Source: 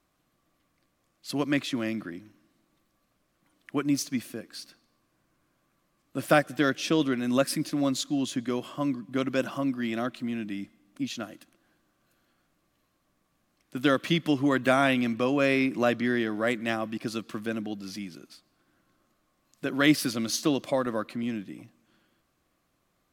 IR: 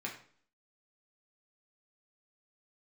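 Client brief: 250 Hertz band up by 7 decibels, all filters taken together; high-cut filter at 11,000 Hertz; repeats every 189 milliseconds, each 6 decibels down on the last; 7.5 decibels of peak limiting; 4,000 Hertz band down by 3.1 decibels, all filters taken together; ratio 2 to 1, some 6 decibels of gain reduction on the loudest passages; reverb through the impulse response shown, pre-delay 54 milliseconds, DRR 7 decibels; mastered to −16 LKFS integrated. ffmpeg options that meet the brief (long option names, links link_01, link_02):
-filter_complex "[0:a]lowpass=11000,equalizer=frequency=250:width_type=o:gain=8,equalizer=frequency=4000:width_type=o:gain=-4,acompressor=threshold=-22dB:ratio=2,alimiter=limit=-17.5dB:level=0:latency=1,aecho=1:1:189|378|567|756|945|1134:0.501|0.251|0.125|0.0626|0.0313|0.0157,asplit=2[link_01][link_02];[1:a]atrim=start_sample=2205,adelay=54[link_03];[link_02][link_03]afir=irnorm=-1:irlink=0,volume=-8.5dB[link_04];[link_01][link_04]amix=inputs=2:normalize=0,volume=9.5dB"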